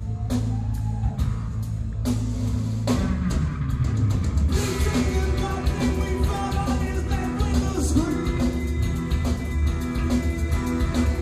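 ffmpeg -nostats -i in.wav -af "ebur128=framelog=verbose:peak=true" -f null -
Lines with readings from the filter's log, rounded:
Integrated loudness:
  I:         -24.7 LUFS
  Threshold: -34.7 LUFS
Loudness range:
  LRA:         2.0 LU
  Threshold: -44.5 LUFS
  LRA low:   -25.9 LUFS
  LRA high:  -23.9 LUFS
True peak:
  Peak:       -7.6 dBFS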